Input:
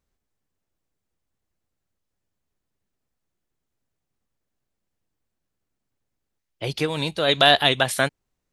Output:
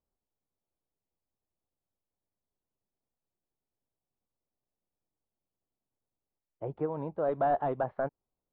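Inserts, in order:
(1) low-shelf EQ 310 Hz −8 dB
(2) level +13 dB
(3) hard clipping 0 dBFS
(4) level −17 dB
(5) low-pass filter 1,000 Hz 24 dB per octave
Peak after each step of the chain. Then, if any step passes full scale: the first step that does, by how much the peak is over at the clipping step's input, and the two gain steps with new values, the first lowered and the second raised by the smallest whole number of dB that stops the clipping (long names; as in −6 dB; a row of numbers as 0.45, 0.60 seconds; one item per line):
−3.0, +10.0, 0.0, −17.0, −18.5 dBFS
step 2, 10.0 dB
step 2 +3 dB, step 4 −7 dB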